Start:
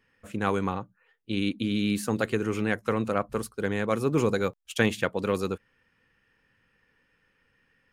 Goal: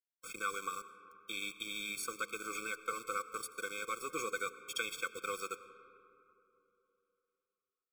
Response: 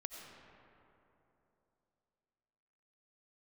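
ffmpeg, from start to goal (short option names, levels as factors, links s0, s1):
-filter_complex "[0:a]highpass=1000,acompressor=threshold=0.00158:ratio=2,aeval=exprs='val(0)+0.00112*sin(2*PI*7800*n/s)':c=same,aeval=exprs='val(0)*gte(abs(val(0)),0.00237)':c=same,asplit=2[s0][s1];[1:a]atrim=start_sample=2205,adelay=6[s2];[s1][s2]afir=irnorm=-1:irlink=0,volume=0.447[s3];[s0][s3]amix=inputs=2:normalize=0,afftfilt=real='re*eq(mod(floor(b*sr/1024/530),2),0)':imag='im*eq(mod(floor(b*sr/1024/530),2),0)':win_size=1024:overlap=0.75,volume=3.55"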